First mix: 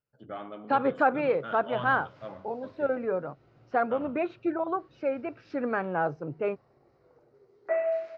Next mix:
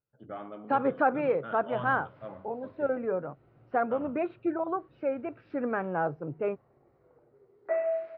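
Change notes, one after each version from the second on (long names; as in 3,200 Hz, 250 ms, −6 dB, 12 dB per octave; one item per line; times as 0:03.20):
master: add high-frequency loss of the air 380 metres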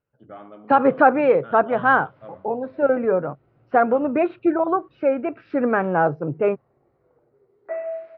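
second voice +10.5 dB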